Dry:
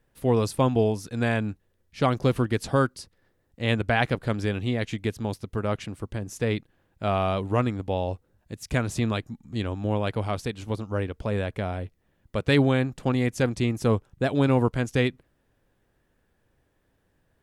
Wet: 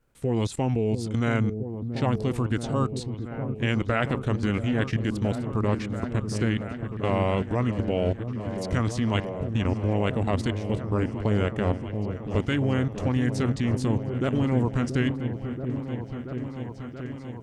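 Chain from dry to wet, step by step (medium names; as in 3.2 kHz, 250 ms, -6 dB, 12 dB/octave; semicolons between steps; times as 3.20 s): formant shift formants -3 st; level held to a coarse grid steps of 15 dB; delay with an opening low-pass 680 ms, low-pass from 400 Hz, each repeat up 1 oct, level -6 dB; trim +6 dB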